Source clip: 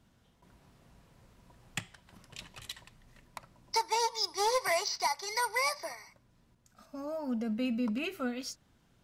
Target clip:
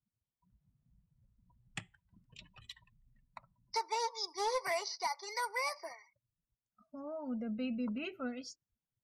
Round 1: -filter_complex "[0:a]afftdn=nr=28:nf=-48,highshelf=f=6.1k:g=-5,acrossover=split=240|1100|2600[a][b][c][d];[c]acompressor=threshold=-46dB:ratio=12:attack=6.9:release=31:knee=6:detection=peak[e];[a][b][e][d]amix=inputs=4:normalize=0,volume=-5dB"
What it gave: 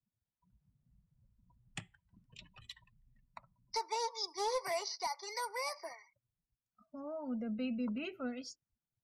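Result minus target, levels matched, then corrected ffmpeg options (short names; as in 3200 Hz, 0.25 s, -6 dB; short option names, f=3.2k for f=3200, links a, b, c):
compressor: peak gain reduction +14 dB
-af "afftdn=nr=28:nf=-48,highshelf=f=6.1k:g=-5,volume=-5dB"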